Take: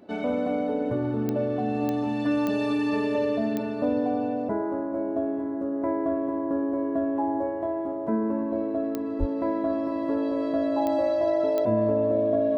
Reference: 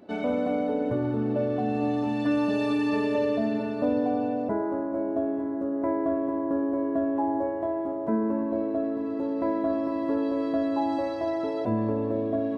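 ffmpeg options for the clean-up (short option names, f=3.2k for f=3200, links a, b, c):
-filter_complex "[0:a]adeclick=t=4,bandreject=f=610:w=30,asplit=3[a][b][c];[a]afade=t=out:st=9.19:d=0.02[d];[b]highpass=f=140:w=0.5412,highpass=f=140:w=1.3066,afade=t=in:st=9.19:d=0.02,afade=t=out:st=9.31:d=0.02[e];[c]afade=t=in:st=9.31:d=0.02[f];[d][e][f]amix=inputs=3:normalize=0"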